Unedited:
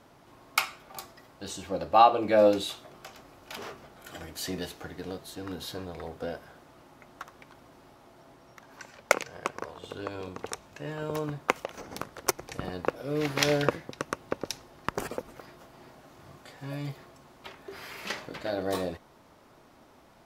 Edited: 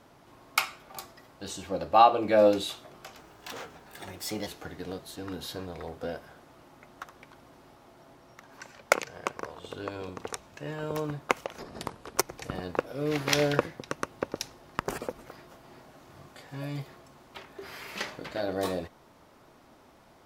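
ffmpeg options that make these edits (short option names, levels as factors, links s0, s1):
-filter_complex "[0:a]asplit=5[s0][s1][s2][s3][s4];[s0]atrim=end=3.194[s5];[s1]atrim=start=3.19:end=4.66,asetpts=PTS-STARTPTS,asetrate=50715,aresample=44100,atrim=end_sample=56371,asetpts=PTS-STARTPTS[s6];[s2]atrim=start=4.656:end=11.784[s7];[s3]atrim=start=11.78:end=12.25,asetpts=PTS-STARTPTS,asetrate=36603,aresample=44100,atrim=end_sample=24972,asetpts=PTS-STARTPTS[s8];[s4]atrim=start=12.246[s9];[s5][s6]acrossfade=d=0.004:c1=hsin:c2=hsin[s10];[s10][s7]acrossfade=d=0.004:c1=hsin:c2=hsin[s11];[s11][s8]acrossfade=d=0.004:c1=hsin:c2=hsin[s12];[s12][s9]acrossfade=d=0.004:c1=hsin:c2=hsin"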